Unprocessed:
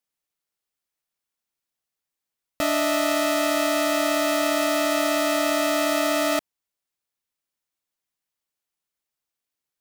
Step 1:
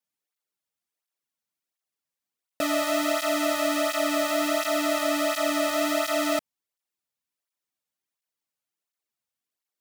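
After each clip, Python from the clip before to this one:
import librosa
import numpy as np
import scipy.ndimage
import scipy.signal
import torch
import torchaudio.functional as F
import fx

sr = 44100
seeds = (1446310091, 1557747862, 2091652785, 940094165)

y = fx.flanger_cancel(x, sr, hz=1.4, depth_ms=3.1)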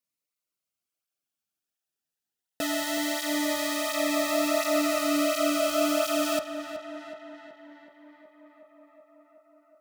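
y = fx.echo_tape(x, sr, ms=373, feedback_pct=77, wet_db=-8.5, lp_hz=3100.0, drive_db=17.0, wow_cents=17)
y = fx.notch_cascade(y, sr, direction='rising', hz=0.21)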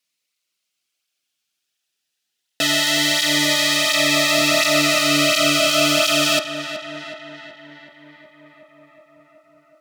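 y = fx.octave_divider(x, sr, octaves=1, level_db=-3.0)
y = fx.weighting(y, sr, curve='D')
y = y * librosa.db_to_amplitude(5.5)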